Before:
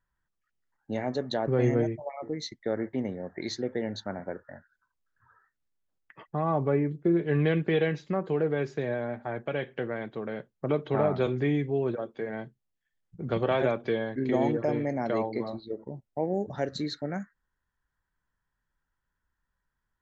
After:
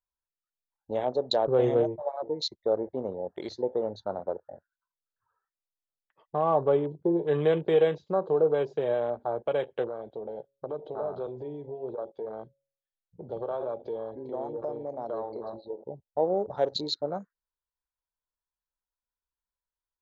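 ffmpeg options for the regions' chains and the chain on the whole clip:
-filter_complex "[0:a]asettb=1/sr,asplit=3[a][b][c];[a]atrim=end=9.884[d];[b]atrim=start=9.88:end=15.88,asetpts=PTS-STARTPTS,afade=t=in:d=0.004:c=qsin,afade=t=out:st=5.996:d=0.004:c=qsin,acompressor=threshold=-35dB:ratio=3:attack=3.2:release=140:knee=1:detection=peak,bandreject=f=138.2:t=h:w=4,bandreject=f=276.4:t=h:w=4,bandreject=f=414.6:t=h:w=4,bandreject=f=552.8:t=h:w=4[e];[c]atrim=start=15.876[f];[d][e]acrossfade=d=0.004:c1=hsin:c2=qsin[g];[g][f]acrossfade=d=0.004:c1=qsin:c2=hsin,afwtdn=0.01,equalizer=f=125:t=o:w=1:g=-6,equalizer=f=250:t=o:w=1:g=-8,equalizer=f=500:t=o:w=1:g=7,equalizer=f=1k:t=o:w=1:g=5,equalizer=f=2k:t=o:w=1:g=-11,equalizer=f=4k:t=o:w=1:g=10"

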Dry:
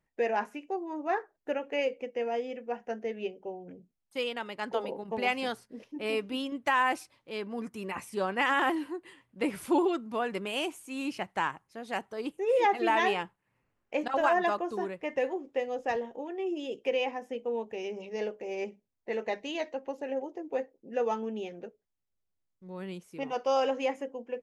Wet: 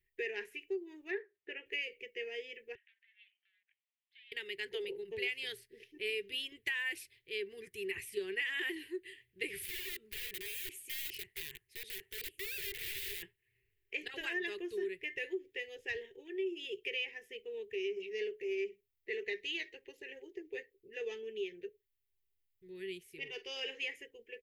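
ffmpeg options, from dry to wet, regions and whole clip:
-filter_complex "[0:a]asettb=1/sr,asplit=3[a][b][c];[a]atrim=end=1.114[d];[b]atrim=start=1.11:end=1.66,asetpts=PTS-STARTPTS,afade=t=in:d=0.004:c=qsin,afade=t=out:st=0.546:d=0.004:c=qsin,highpass=150,lowpass=3k,asplit=2[e][f];[f]adelay=15,volume=-14dB[g];[e][g]amix=inputs=2:normalize=0,atrim=end_sample=24255[h];[c]atrim=start=1.656[i];[d][h]acrossfade=d=0.004:c1=hsin:c2=qsin[j];[j][i]acrossfade=d=0.004:c1=qsin:c2=hsin,asettb=1/sr,asplit=3[k][l][m];[k]atrim=end=2.754[n];[l]atrim=start=2.75:end=4.32,asetpts=PTS-STARTPTS,afade=t=in:d=0.004:c=qsin,afade=t=out:st=1.566:d=0.004:c=qsin,aeval=exprs='clip(val(0),-1,0.00944)':c=same,acompressor=threshold=-50dB:ratio=12:attack=3.2:release=140:knee=1:detection=peak,asuperpass=centerf=2400:order=8:qfactor=1[o];[m]atrim=start=4.316[p];[n][o]acrossfade=d=0.004:c1=hsin:c2=qsin[q];[q][p]acrossfade=d=0.004:c1=qsin:c2=hsin,asettb=1/sr,asplit=3[r][s][t];[r]atrim=end=9.634[u];[s]atrim=start=9.63:end=13.23,asetpts=PTS-STARTPTS,afade=t=in:d=0.004:c=qsin,afade=t=out:st=3.596:d=0.004:c=qsin,equalizer=f=200:w=2.7:g=-2.5,acompressor=threshold=-35dB:ratio=8:attack=3.2:release=140:knee=1:detection=peak,aeval=exprs='(mod(70.8*val(0)+1,2)-1)/70.8':c=same[v];[t]atrim=start=13.226[w];[u][v]acrossfade=d=0.004:c1=hsin:c2=qsin[x];[x][w]acrossfade=d=0.004:c1=qsin:c2=hsin,asettb=1/sr,asplit=3[y][z][aa];[y]atrim=end=23.184[ab];[z]atrim=start=23.18:end=23.81,asetpts=PTS-STARTPTS,afade=t=in:d=0.004:c=qsin,afade=t=out:st=0.626:d=0.004:c=qsin,highshelf=f=8.7k:g=-5.5,asplit=2[ac][ad];[ad]adelay=45,volume=-13dB[ae];[ac][ae]amix=inputs=2:normalize=0,atrim=end_sample=27783[af];[aa]atrim=start=23.806[ag];[ab][af]acrossfade=d=0.004:c1=hsin:c2=qsin[ah];[ah][ag]acrossfade=d=0.004:c1=qsin:c2=hsin,firequalizer=gain_entry='entry(100,0);entry(250,-30);entry(390,4);entry(560,-27);entry(810,-29);entry(1300,-25);entry(1800,2);entry(3000,3);entry(5900,-7);entry(14000,8)':delay=0.05:min_phase=1,acompressor=threshold=-33dB:ratio=6"

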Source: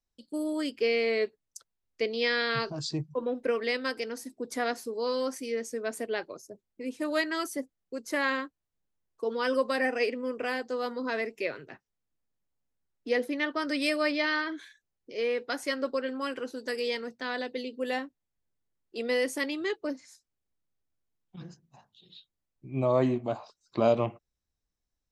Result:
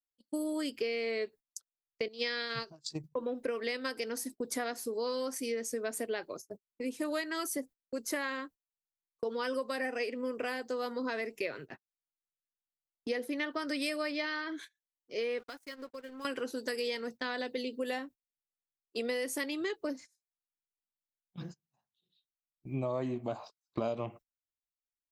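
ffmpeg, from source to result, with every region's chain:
-filter_complex "[0:a]asettb=1/sr,asplit=3[a][b][c];[a]atrim=end=2.084[d];[b]atrim=start=2.08:end=3.04,asetpts=PTS-STARTPTS,afade=t=in:d=0.004:c=qsin,afade=t=out:st=0.956:d=0.004:c=qsin,highshelf=f=5.9k:g=10.5,agate=range=-15dB:threshold=-29dB:ratio=16:release=100:detection=peak[e];[c]atrim=start=3.036[f];[d][e]acrossfade=d=0.004:c1=hsin:c2=qsin[g];[g][f]acrossfade=d=0.004:c1=qsin:c2=hsin,asettb=1/sr,asplit=3[h][i][j];[h]atrim=end=15.394[k];[i]atrim=start=15.39:end=16.25,asetpts=PTS-STARTPTS,afade=t=in:d=0.004:c=qsin,afade=t=out:st=0.856:d=0.004:c=qsin,bandreject=f=590:w=9.6,aeval=exprs='sgn(val(0))*max(abs(val(0))-0.00473,0)':c=same,acompressor=threshold=-42dB:ratio=6:attack=3.2:release=140:knee=1:detection=peak[l];[j]atrim=start=16.246[m];[k][l]acrossfade=d=0.004:c1=hsin:c2=qsin[n];[n][m]acrossfade=d=0.004:c1=qsin:c2=hsin,agate=range=-27dB:threshold=-45dB:ratio=16:detection=peak,highshelf=f=10k:g=12,acompressor=threshold=-33dB:ratio=6,volume=1.5dB"

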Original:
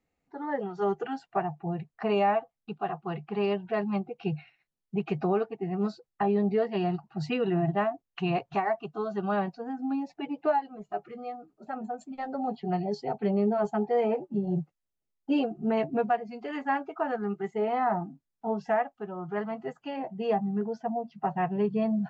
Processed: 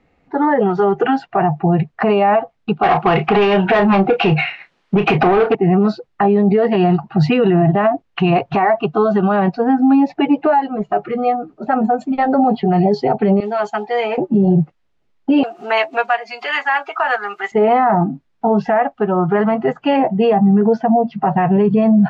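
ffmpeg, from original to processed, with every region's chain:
-filter_complex "[0:a]asettb=1/sr,asplit=3[a][b][c];[a]atrim=end=2.834[d];[b]atrim=start=2.83:end=5.55,asetpts=PTS-STARTPTS,afade=t=in:d=0.004:c=qsin,afade=t=out:st=2.716:d=0.004:c=qsin,acompressor=threshold=-32dB:ratio=4:attack=3.2:release=140:knee=1:detection=peak,asplit=2[e][f];[f]highpass=f=720:p=1,volume=21dB,asoftclip=type=tanh:threshold=-22dB[g];[e][g]amix=inputs=2:normalize=0,lowpass=f=4.5k:p=1,volume=-6dB,asplit=2[h][i];[i]adelay=31,volume=-10dB[j];[h][j]amix=inputs=2:normalize=0,atrim=end_sample=119952[k];[c]atrim=start=5.546[l];[d][k]acrossfade=d=0.004:c1=hsin:c2=qsin[m];[m][l]acrossfade=d=0.004:c1=qsin:c2=hsin,asettb=1/sr,asplit=3[n][o][p];[n]atrim=end=13.404[q];[o]atrim=start=13.4:end=14.18,asetpts=PTS-STARTPTS,afade=t=in:d=0.004:c=qsin,afade=t=out:st=0.776:d=0.004:c=qsin,bandpass=f=4.4k:t=q:w=0.65,aemphasis=mode=production:type=50kf[r];[p]atrim=start=14.176[s];[q][r]acrossfade=d=0.004:c1=hsin:c2=qsin[t];[t][s]acrossfade=d=0.004:c1=qsin:c2=hsin,asettb=1/sr,asplit=3[u][v][w];[u]atrim=end=15.434[x];[v]atrim=start=15.43:end=17.52,asetpts=PTS-STARTPTS,afade=t=in:d=0.004:c=qsin,afade=t=out:st=2.086:d=0.004:c=qsin,highpass=1k,aemphasis=mode=production:type=riaa,acompressor=mode=upward:threshold=-44dB:ratio=2.5:attack=3.2:release=140:knee=2.83:detection=peak[y];[w]atrim=start=17.516[z];[x][y]acrossfade=d=0.004:c1=hsin:c2=qsin[aa];[aa][z]acrossfade=d=0.004:c1=qsin:c2=hsin,lowpass=3.1k,alimiter=level_in=27dB:limit=-1dB:release=50:level=0:latency=1,volume=-5.5dB"

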